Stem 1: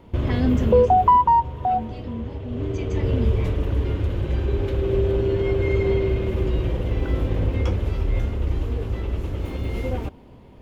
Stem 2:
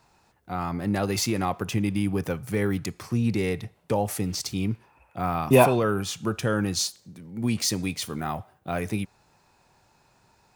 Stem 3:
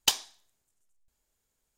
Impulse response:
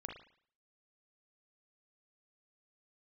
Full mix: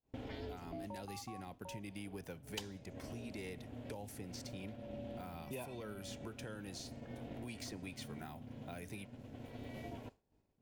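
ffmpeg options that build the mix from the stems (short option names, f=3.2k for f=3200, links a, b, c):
-filter_complex "[0:a]aeval=exprs='val(0)*sin(2*PI*180*n/s)':c=same,volume=-11dB[a];[1:a]acompressor=threshold=-26dB:ratio=2,aeval=exprs='val(0)+0.00126*(sin(2*PI*50*n/s)+sin(2*PI*2*50*n/s)/2+sin(2*PI*3*50*n/s)/3+sin(2*PI*4*50*n/s)/4+sin(2*PI*5*50*n/s)/5)':c=same,volume=-10dB,asplit=2[b][c];[2:a]adelay=2500,volume=-2dB[d];[c]apad=whole_len=467964[e];[a][e]sidechaincompress=threshold=-41dB:ratio=8:attack=12:release=1050[f];[f][b][d]amix=inputs=3:normalize=0,acrossover=split=410|2800[g][h][i];[g]acompressor=threshold=-48dB:ratio=4[j];[h]acompressor=threshold=-49dB:ratio=4[k];[i]acompressor=threshold=-52dB:ratio=4[l];[j][k][l]amix=inputs=3:normalize=0,bandreject=f=1.2k:w=5.7,agate=range=-33dB:threshold=-46dB:ratio=3:detection=peak"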